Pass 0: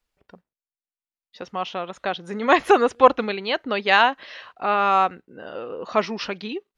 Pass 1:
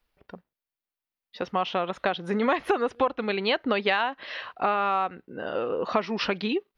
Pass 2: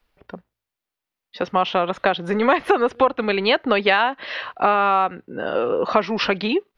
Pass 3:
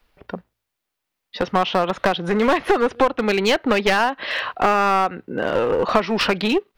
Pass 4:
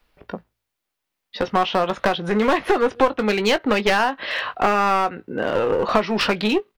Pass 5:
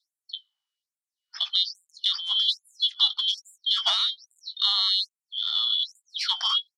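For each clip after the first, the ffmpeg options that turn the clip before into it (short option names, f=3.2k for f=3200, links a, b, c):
-af "equalizer=f=7.3k:w=1.6:g=-12.5,acompressor=threshold=-25dB:ratio=12,volume=4.5dB"
-filter_complex "[0:a]highshelf=f=5.8k:g=-5.5,acrossover=split=330[a][b];[a]asoftclip=type=tanh:threshold=-30.5dB[c];[c][b]amix=inputs=2:normalize=0,bandreject=f=55.89:t=h:w=4,bandreject=f=111.78:t=h:w=4,volume=7.5dB"
-filter_complex "[0:a]asplit=2[a][b];[b]acompressor=threshold=-25dB:ratio=6,volume=1dB[c];[a][c]amix=inputs=2:normalize=0,aeval=exprs='clip(val(0),-1,0.158)':c=same,volume=-1dB"
-filter_complex "[0:a]asplit=2[a][b];[b]adelay=19,volume=-11dB[c];[a][c]amix=inputs=2:normalize=0,volume=-1dB"
-af "afftfilt=real='real(if(lt(b,272),68*(eq(floor(b/68),0)*1+eq(floor(b/68),1)*3+eq(floor(b/68),2)*0+eq(floor(b/68),3)*2)+mod(b,68),b),0)':imag='imag(if(lt(b,272),68*(eq(floor(b/68),0)*1+eq(floor(b/68),1)*3+eq(floor(b/68),2)*0+eq(floor(b/68),3)*2)+mod(b,68),b),0)':win_size=2048:overlap=0.75,lowpass=9.1k,afftfilt=real='re*gte(b*sr/1024,640*pow(7200/640,0.5+0.5*sin(2*PI*1.2*pts/sr)))':imag='im*gte(b*sr/1024,640*pow(7200/640,0.5+0.5*sin(2*PI*1.2*pts/sr)))':win_size=1024:overlap=0.75,volume=-5dB"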